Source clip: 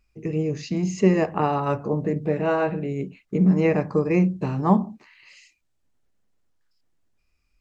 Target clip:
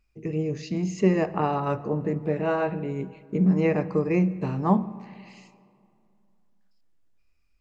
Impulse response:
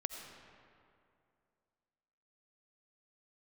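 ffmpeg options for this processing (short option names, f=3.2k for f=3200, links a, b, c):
-filter_complex "[0:a]asplit=2[a][b];[b]lowpass=5.8k[c];[1:a]atrim=start_sample=2205[d];[c][d]afir=irnorm=-1:irlink=0,volume=-11dB[e];[a][e]amix=inputs=2:normalize=0,volume=-4.5dB"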